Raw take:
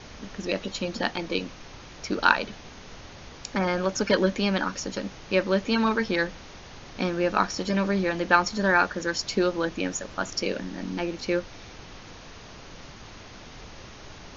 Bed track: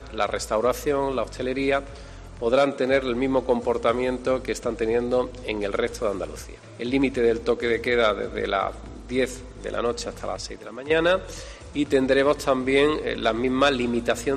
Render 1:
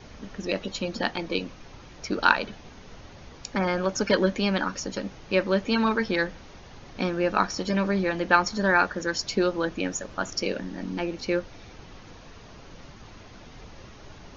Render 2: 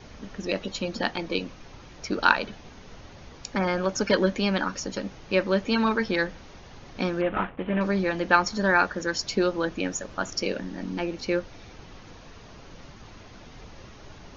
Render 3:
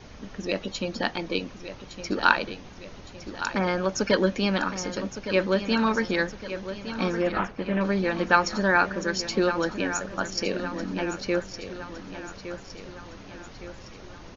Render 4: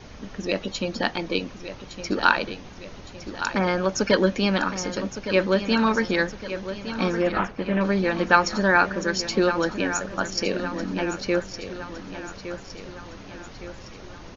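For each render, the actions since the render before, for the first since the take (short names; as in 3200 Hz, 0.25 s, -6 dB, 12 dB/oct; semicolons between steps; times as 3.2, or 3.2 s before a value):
denoiser 6 dB, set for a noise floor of -45 dBFS
7.21–7.81 CVSD 16 kbps
feedback echo 1.162 s, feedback 51%, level -11 dB
gain +2.5 dB; limiter -2 dBFS, peak gain reduction 3 dB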